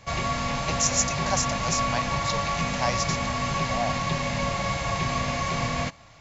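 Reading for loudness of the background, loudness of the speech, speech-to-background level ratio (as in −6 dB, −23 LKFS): −27.0 LKFS, −29.5 LKFS, −2.5 dB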